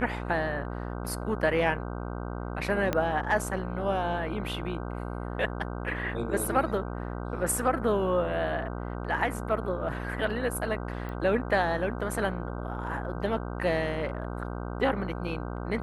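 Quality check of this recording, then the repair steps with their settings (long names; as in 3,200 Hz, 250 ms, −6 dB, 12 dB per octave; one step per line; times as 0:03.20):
mains buzz 60 Hz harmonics 26 −35 dBFS
0:02.93: click −13 dBFS
0:11.09: click −26 dBFS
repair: click removal
hum removal 60 Hz, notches 26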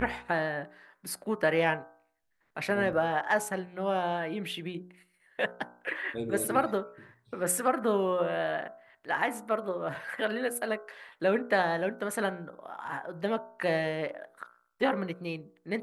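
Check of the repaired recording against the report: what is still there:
0:02.93: click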